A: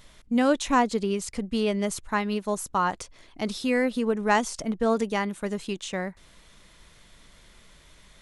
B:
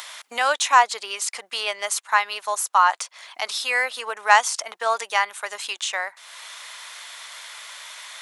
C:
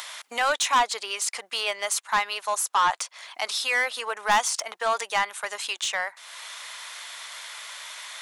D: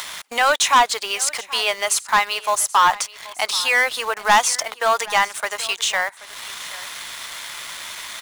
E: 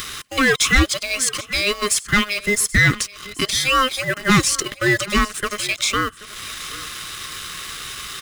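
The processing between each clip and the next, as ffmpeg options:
ffmpeg -i in.wav -filter_complex "[0:a]highpass=frequency=790:width=0.5412,highpass=frequency=790:width=1.3066,asplit=2[link_01][link_02];[link_02]acompressor=mode=upward:threshold=-33dB:ratio=2.5,volume=2.5dB[link_03];[link_01][link_03]amix=inputs=2:normalize=0,volume=2dB" out.wav
ffmpeg -i in.wav -af "asoftclip=type=tanh:threshold=-15.5dB" out.wav
ffmpeg -i in.wav -filter_complex "[0:a]asplit=2[link_01][link_02];[link_02]acrusher=bits=5:mix=0:aa=0.000001,volume=-3dB[link_03];[link_01][link_03]amix=inputs=2:normalize=0,aecho=1:1:780:0.112,volume=2dB" out.wav
ffmpeg -i in.wav -af "afftfilt=real='real(if(between(b,1,1008),(2*floor((b-1)/48)+1)*48-b,b),0)':imag='imag(if(between(b,1,1008),(2*floor((b-1)/48)+1)*48-b,b),0)*if(between(b,1,1008),-1,1)':win_size=2048:overlap=0.75,aeval=exprs='0.794*sin(PI/2*1.41*val(0)/0.794)':channel_layout=same,volume=-5.5dB" out.wav

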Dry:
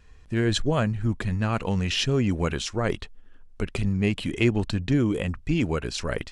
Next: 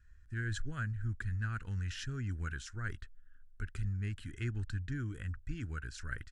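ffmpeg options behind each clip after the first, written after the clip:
ffmpeg -i in.wav -af "firequalizer=gain_entry='entry(100,0);entry(180,-14);entry(270,-12);entry(570,-26);entry(1000,-19);entry(1500,4);entry(2300,-13);entry(3600,-13);entry(7200,-6);entry(11000,-8)':delay=0.05:min_phase=1,volume=-7.5dB" out.wav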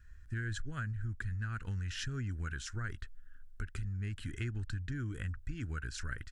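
ffmpeg -i in.wav -af "acompressor=threshold=-40dB:ratio=6,volume=5.5dB" out.wav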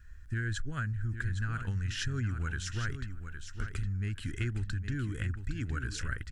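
ffmpeg -i in.wav -af "aecho=1:1:812|1624|2436:0.355|0.0639|0.0115,volume=4dB" out.wav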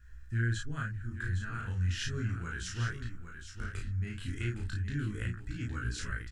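ffmpeg -i in.wav -filter_complex "[0:a]flanger=delay=16:depth=7.1:speed=0.35,asplit=2[link_01][link_02];[link_02]adelay=34,volume=-2dB[link_03];[link_01][link_03]amix=inputs=2:normalize=0" out.wav

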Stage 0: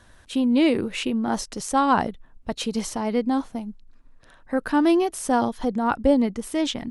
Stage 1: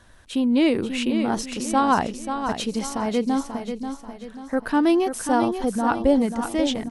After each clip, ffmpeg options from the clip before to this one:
ffmpeg -i in.wav -af "aecho=1:1:537|1074|1611|2148|2685:0.398|0.163|0.0669|0.0274|0.0112" out.wav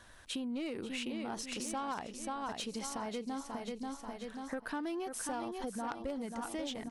ffmpeg -i in.wav -af "lowshelf=frequency=440:gain=-7,aeval=exprs='0.355*(cos(1*acos(clip(val(0)/0.355,-1,1)))-cos(1*PI/2))+0.112*(cos(3*acos(clip(val(0)/0.355,-1,1)))-cos(3*PI/2))+0.0501*(cos(5*acos(clip(val(0)/0.355,-1,1)))-cos(5*PI/2))':channel_layout=same,acompressor=threshold=-38dB:ratio=6,volume=1dB" out.wav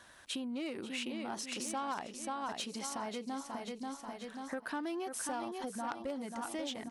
ffmpeg -i in.wav -af "highpass=frequency=210:poles=1,bandreject=frequency=460:width=12,volume=1dB" out.wav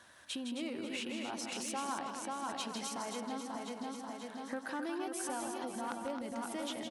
ffmpeg -i in.wav -filter_complex "[0:a]highpass=69,asplit=2[link_01][link_02];[link_02]aecho=0:1:160.3|265.3:0.447|0.447[link_03];[link_01][link_03]amix=inputs=2:normalize=0,volume=-1.5dB" out.wav

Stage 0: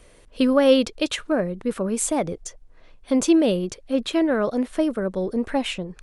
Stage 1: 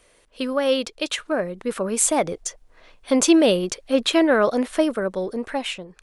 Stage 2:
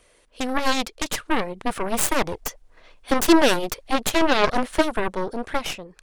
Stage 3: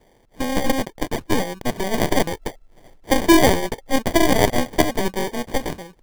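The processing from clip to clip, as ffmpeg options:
ffmpeg -i in.wav -af "lowshelf=frequency=340:gain=-11.5,dynaudnorm=framelen=310:gausssize=9:maxgain=11dB,volume=-1.5dB" out.wav
ffmpeg -i in.wav -af "aphaser=in_gain=1:out_gain=1:delay=4.4:decay=0.22:speed=1.8:type=triangular,aeval=exprs='0.631*(cos(1*acos(clip(val(0)/0.631,-1,1)))-cos(1*PI/2))+0.0282*(cos(3*acos(clip(val(0)/0.631,-1,1)))-cos(3*PI/2))+0.126*(cos(7*acos(clip(val(0)/0.631,-1,1)))-cos(7*PI/2))+0.0794*(cos(8*acos(clip(val(0)/0.631,-1,1)))-cos(8*PI/2))':channel_layout=same,alimiter=limit=-12dB:level=0:latency=1:release=91,volume=4.5dB" out.wav
ffmpeg -i in.wav -af "acrusher=samples=33:mix=1:aa=0.000001,volume=2.5dB" out.wav

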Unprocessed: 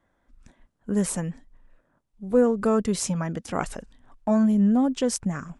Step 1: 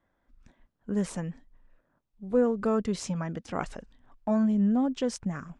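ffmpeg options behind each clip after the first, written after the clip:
ffmpeg -i in.wav -af "lowpass=5600,volume=-4.5dB" out.wav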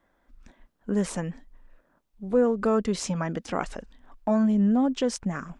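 ffmpeg -i in.wav -filter_complex "[0:a]equalizer=frequency=110:width=1.5:gain=-10.5,asplit=2[link_01][link_02];[link_02]alimiter=level_in=1dB:limit=-24dB:level=0:latency=1:release=404,volume=-1dB,volume=1.5dB[link_03];[link_01][link_03]amix=inputs=2:normalize=0" out.wav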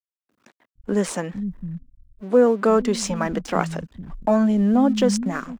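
ffmpeg -i in.wav -filter_complex "[0:a]aeval=exprs='sgn(val(0))*max(abs(val(0))-0.00251,0)':channel_layout=same,acrossover=split=180[link_01][link_02];[link_01]adelay=460[link_03];[link_03][link_02]amix=inputs=2:normalize=0,volume=7dB" out.wav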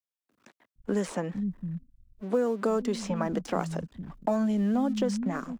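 ffmpeg -i in.wav -filter_complex "[0:a]acrossover=split=100|1200|3800[link_01][link_02][link_03][link_04];[link_01]acompressor=threshold=-50dB:ratio=4[link_05];[link_02]acompressor=threshold=-22dB:ratio=4[link_06];[link_03]acompressor=threshold=-43dB:ratio=4[link_07];[link_04]acompressor=threshold=-43dB:ratio=4[link_08];[link_05][link_06][link_07][link_08]amix=inputs=4:normalize=0,volume=-2.5dB" out.wav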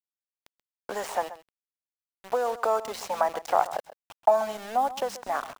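ffmpeg -i in.wav -af "highpass=frequency=760:width_type=q:width=3.4,aeval=exprs='val(0)*gte(abs(val(0)),0.0112)':channel_layout=same,aecho=1:1:132:0.168,volume=2dB" out.wav

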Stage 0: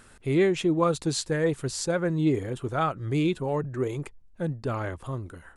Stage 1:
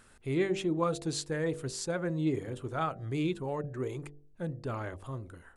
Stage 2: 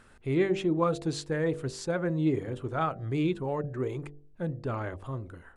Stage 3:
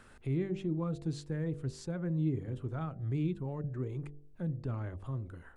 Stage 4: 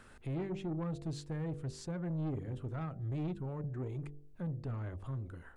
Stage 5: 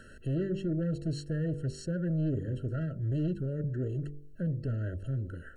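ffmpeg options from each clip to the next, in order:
ffmpeg -i in.wav -af "bandreject=frequency=48.53:width_type=h:width=4,bandreject=frequency=97.06:width_type=h:width=4,bandreject=frequency=145.59:width_type=h:width=4,bandreject=frequency=194.12:width_type=h:width=4,bandreject=frequency=242.65:width_type=h:width=4,bandreject=frequency=291.18:width_type=h:width=4,bandreject=frequency=339.71:width_type=h:width=4,bandreject=frequency=388.24:width_type=h:width=4,bandreject=frequency=436.77:width_type=h:width=4,bandreject=frequency=485.3:width_type=h:width=4,bandreject=frequency=533.83:width_type=h:width=4,bandreject=frequency=582.36:width_type=h:width=4,bandreject=frequency=630.89:width_type=h:width=4,bandreject=frequency=679.42:width_type=h:width=4,bandreject=frequency=727.95:width_type=h:width=4,bandreject=frequency=776.48:width_type=h:width=4,volume=-6dB" out.wav
ffmpeg -i in.wav -af "highshelf=frequency=5200:gain=-11.5,volume=3.5dB" out.wav
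ffmpeg -i in.wav -filter_complex "[0:a]acrossover=split=240[link_01][link_02];[link_02]acompressor=threshold=-54dB:ratio=2[link_03];[link_01][link_03]amix=inputs=2:normalize=0" out.wav
ffmpeg -i in.wav -af "asoftclip=type=tanh:threshold=-32.5dB" out.wav
ffmpeg -i in.wav -af "afftfilt=real='re*eq(mod(floor(b*sr/1024/650),2),0)':imag='im*eq(mod(floor(b*sr/1024/650),2),0)':win_size=1024:overlap=0.75,volume=6.5dB" out.wav

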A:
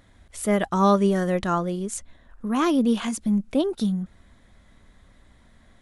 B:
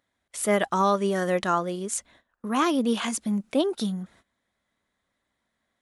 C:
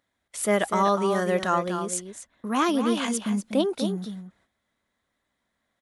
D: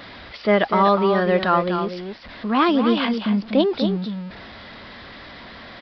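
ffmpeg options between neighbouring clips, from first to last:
ffmpeg -i in.wav -af "highpass=frequency=440:poles=1,agate=range=-19dB:threshold=-56dB:ratio=16:detection=peak,alimiter=limit=-14.5dB:level=0:latency=1:release=360,volume=3dB" out.wav
ffmpeg -i in.wav -filter_complex "[0:a]asplit=2[link_01][link_02];[link_02]adelay=244.9,volume=-8dB,highshelf=frequency=4000:gain=-5.51[link_03];[link_01][link_03]amix=inputs=2:normalize=0" out.wav
ffmpeg -i in.wav -af "aeval=exprs='val(0)+0.5*0.0126*sgn(val(0))':channel_layout=same,aresample=11025,aresample=44100,volume=5dB" out.wav

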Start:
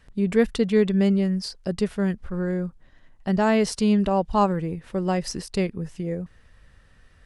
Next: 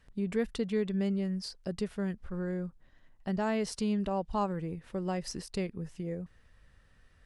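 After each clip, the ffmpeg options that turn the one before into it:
ffmpeg -i in.wav -af "acompressor=threshold=-25dB:ratio=1.5,volume=-7.5dB" out.wav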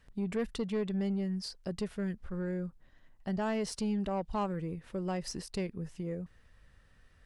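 ffmpeg -i in.wav -af "asoftclip=type=tanh:threshold=-25.5dB" out.wav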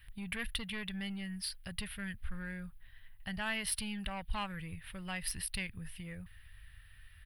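ffmpeg -i in.wav -af "firequalizer=gain_entry='entry(100,0);entry(150,-12);entry(370,-26);entry(770,-13);entry(1200,-9);entry(1700,1);entry(3200,4);entry(6800,-20);entry(9800,9)':delay=0.05:min_phase=1,volume=6.5dB" out.wav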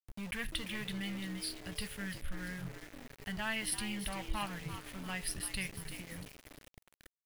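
ffmpeg -i in.wav -filter_complex "[0:a]flanger=delay=8.6:depth=2.4:regen=-72:speed=0.84:shape=triangular,asplit=5[link_01][link_02][link_03][link_04][link_05];[link_02]adelay=342,afreqshift=120,volume=-10dB[link_06];[link_03]adelay=684,afreqshift=240,volume=-17.5dB[link_07];[link_04]adelay=1026,afreqshift=360,volume=-25.1dB[link_08];[link_05]adelay=1368,afreqshift=480,volume=-32.6dB[link_09];[link_01][link_06][link_07][link_08][link_09]amix=inputs=5:normalize=0,aeval=exprs='val(0)*gte(abs(val(0)),0.00335)':channel_layout=same,volume=4dB" out.wav

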